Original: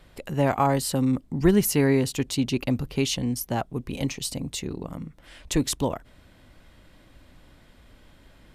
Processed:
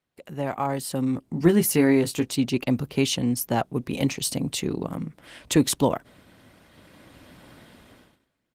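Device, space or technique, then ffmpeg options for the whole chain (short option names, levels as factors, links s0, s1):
video call: -filter_complex "[0:a]asplit=3[s0][s1][s2];[s0]afade=t=out:st=1.07:d=0.02[s3];[s1]asplit=2[s4][s5];[s5]adelay=18,volume=0.447[s6];[s4][s6]amix=inputs=2:normalize=0,afade=t=in:st=1.07:d=0.02,afade=t=out:st=2.28:d=0.02[s7];[s2]afade=t=in:st=2.28:d=0.02[s8];[s3][s7][s8]amix=inputs=3:normalize=0,highpass=120,dynaudnorm=f=290:g=7:m=6.68,agate=range=0.126:threshold=0.00501:ratio=16:detection=peak,volume=0.501" -ar 48000 -c:a libopus -b:a 24k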